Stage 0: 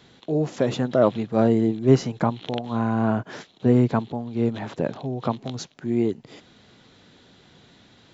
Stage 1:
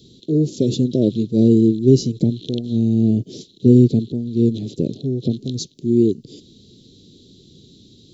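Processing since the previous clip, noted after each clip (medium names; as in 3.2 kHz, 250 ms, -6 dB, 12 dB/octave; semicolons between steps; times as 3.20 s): elliptic band-stop 390–3900 Hz, stop band 80 dB; loudness maximiser +9 dB; trim -1 dB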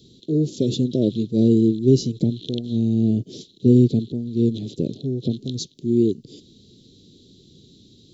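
dynamic bell 3.4 kHz, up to +4 dB, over -48 dBFS, Q 2.4; trim -3 dB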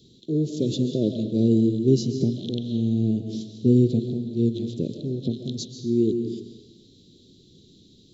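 reverberation RT60 1.1 s, pre-delay 95 ms, DRR 7 dB; trim -3.5 dB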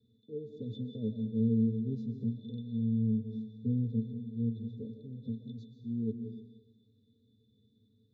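pitch-class resonator A, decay 0.12 s; trim -6 dB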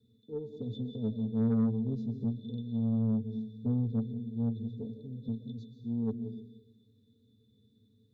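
Chebyshev shaper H 5 -24 dB, 8 -32 dB, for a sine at -19 dBFS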